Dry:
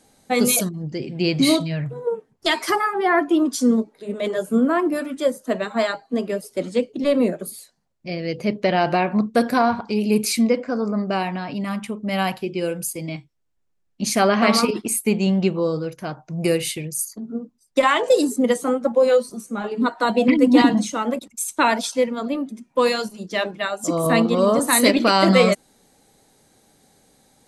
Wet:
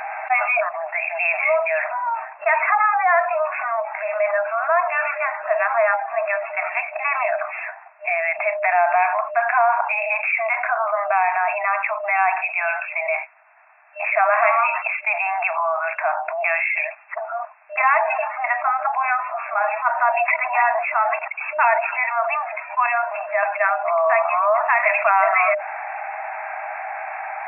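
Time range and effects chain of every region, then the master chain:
22.86–23.43 RIAA curve playback + compressor, threshold -21 dBFS
whole clip: FFT band-pass 610–2700 Hz; fast leveller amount 70%

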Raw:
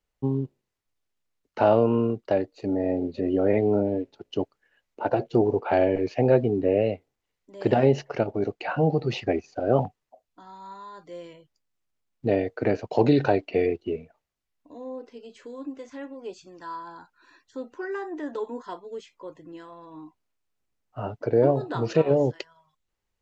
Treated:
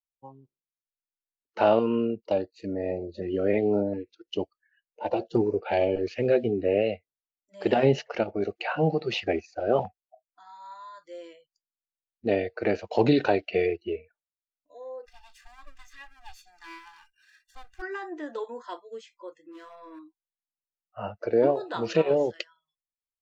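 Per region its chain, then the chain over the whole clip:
1.79–6.53 notch 680 Hz, Q 17 + LFO notch saw up 1.4 Hz 560–2600 Hz
15.06–17.82 minimum comb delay 1.1 ms + comb 2.5 ms, depth 56% + dynamic EQ 640 Hz, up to -8 dB, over -55 dBFS, Q 1.1
19.51–19.99 low shelf 120 Hz +11.5 dB + hard clip -39 dBFS + doubler 22 ms -4.5 dB
whole clip: spectral noise reduction 25 dB; dynamic EQ 3000 Hz, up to +6 dB, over -48 dBFS, Q 1; gain -1.5 dB

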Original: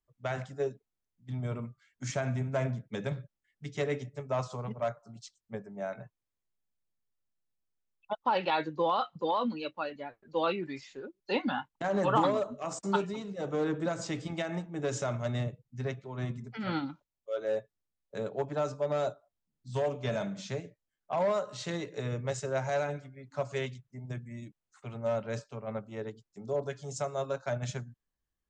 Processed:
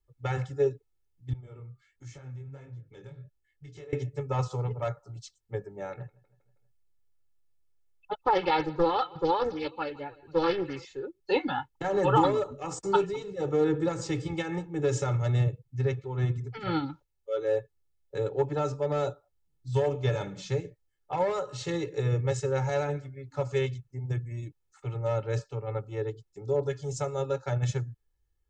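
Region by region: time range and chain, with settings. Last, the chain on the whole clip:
1.33–3.93 compressor 4:1, threshold -48 dBFS + chorus 1.4 Hz, delay 17.5 ms, depth 7.9 ms
5.92–10.85 feedback echo 0.16 s, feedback 57%, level -22 dB + Doppler distortion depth 0.76 ms
whole clip: low shelf 260 Hz +10.5 dB; comb 2.3 ms, depth 99%; gain -1.5 dB

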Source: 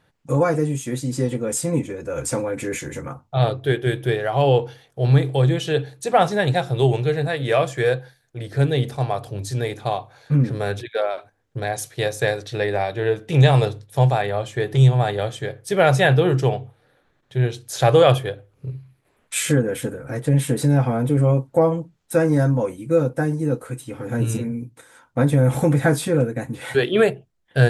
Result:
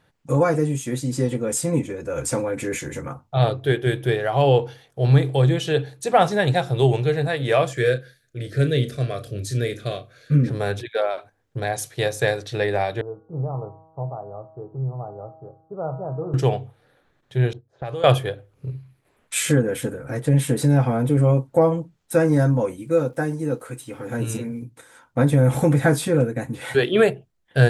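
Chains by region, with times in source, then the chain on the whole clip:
7.73–10.48 Butterworth band-stop 870 Hz, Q 1.4 + doubler 33 ms -11.5 dB
13.01–16.34 steep low-pass 1300 Hz 96 dB/oct + resonator 160 Hz, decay 1.2 s, mix 80%
17.53–18.04 low-pass opened by the level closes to 650 Hz, open at -9.5 dBFS + gate -40 dBFS, range -13 dB + compressor 4:1, threshold -29 dBFS
22.82–24.62 low shelf 240 Hz -6.5 dB + crackle 370/s -54 dBFS
whole clip: dry

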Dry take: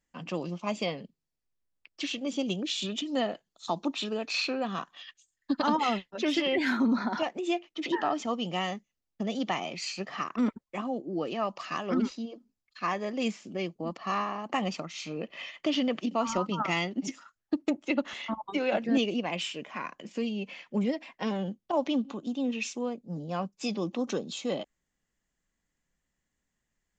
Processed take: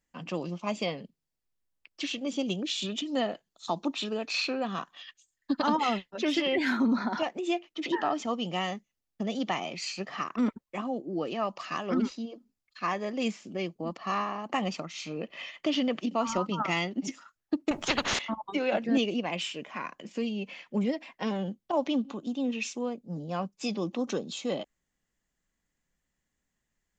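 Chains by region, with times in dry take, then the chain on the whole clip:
17.71–18.19 tilt -2 dB/oct + spectral compressor 4:1
whole clip: dry

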